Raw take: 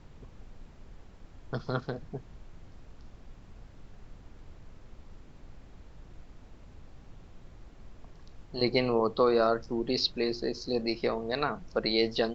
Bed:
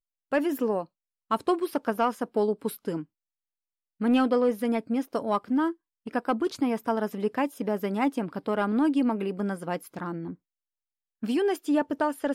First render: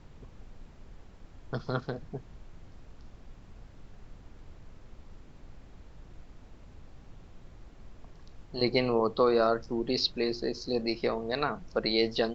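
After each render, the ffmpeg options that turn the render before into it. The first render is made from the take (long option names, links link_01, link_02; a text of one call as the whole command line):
ffmpeg -i in.wav -af anull out.wav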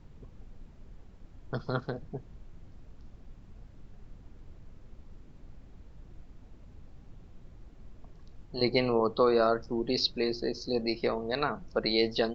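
ffmpeg -i in.wav -af "afftdn=noise_reduction=6:noise_floor=-53" out.wav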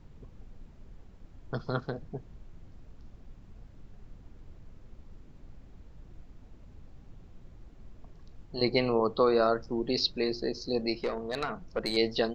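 ffmpeg -i in.wav -filter_complex "[0:a]asettb=1/sr,asplit=3[link_01][link_02][link_03];[link_01]atrim=end=11.034[link_04];[link_02]atrim=start=11.03:end=11.97,asetpts=PTS-STARTPTS,afade=type=in:duration=0.004:curve=qsin,afade=type=out:start_time=0.936:duration=0.004:curve=qsin,aeval=exprs='(tanh(12.6*val(0)+0.35)-tanh(0.35))/12.6':channel_layout=same[link_05];[link_03]atrim=start=11.966[link_06];[link_04][link_05]acrossfade=duration=0.004:curve1=hsin:curve2=qsin[link_07];[link_07][link_06]acrossfade=duration=0.004:curve1=qsin:curve2=hsin" out.wav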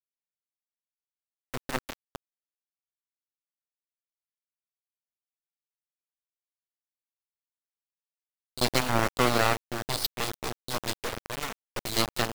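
ffmpeg -i in.wav -af "aeval=exprs='0.282*(cos(1*acos(clip(val(0)/0.282,-1,1)))-cos(1*PI/2))+0.0562*(cos(2*acos(clip(val(0)/0.282,-1,1)))-cos(2*PI/2))+0.00251*(cos(6*acos(clip(val(0)/0.282,-1,1)))-cos(6*PI/2))+0.0891*(cos(7*acos(clip(val(0)/0.282,-1,1)))-cos(7*PI/2))':channel_layout=same,acrusher=bits=4:mix=0:aa=0.000001" out.wav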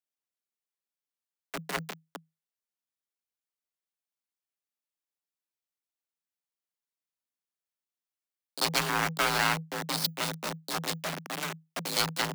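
ffmpeg -i in.wav -filter_complex "[0:a]afreqshift=160,acrossover=split=940[link_01][link_02];[link_01]asoftclip=type=tanh:threshold=-32.5dB[link_03];[link_03][link_02]amix=inputs=2:normalize=0" out.wav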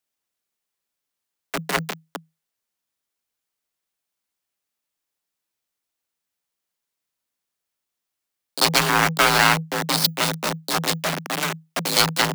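ffmpeg -i in.wav -af "volume=10dB,alimiter=limit=-1dB:level=0:latency=1" out.wav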